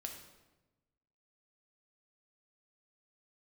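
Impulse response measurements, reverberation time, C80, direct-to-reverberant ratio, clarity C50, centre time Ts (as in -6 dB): 1.1 s, 8.5 dB, 2.5 dB, 6.0 dB, 28 ms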